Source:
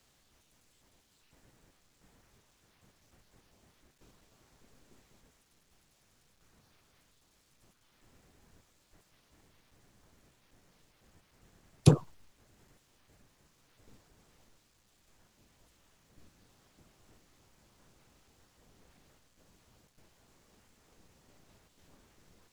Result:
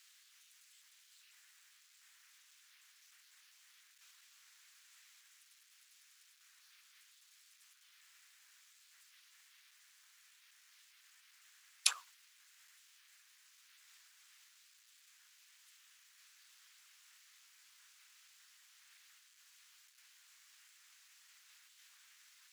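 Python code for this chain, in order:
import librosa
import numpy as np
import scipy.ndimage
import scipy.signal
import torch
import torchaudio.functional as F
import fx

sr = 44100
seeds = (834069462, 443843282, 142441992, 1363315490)

y = scipy.signal.sosfilt(scipy.signal.cheby2(4, 70, 340.0, 'highpass', fs=sr, output='sos'), x)
y = y * 10.0 ** (6.0 / 20.0)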